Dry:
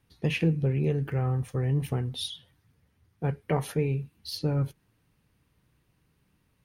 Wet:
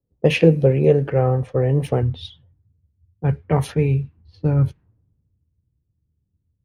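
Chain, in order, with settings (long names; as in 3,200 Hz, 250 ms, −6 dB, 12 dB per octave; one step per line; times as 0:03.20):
low-pass that shuts in the quiet parts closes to 370 Hz, open at −23 dBFS
parametric band 550 Hz +13 dB 0.84 octaves, from 0:02.02 85 Hz
multiband upward and downward expander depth 40%
level +6.5 dB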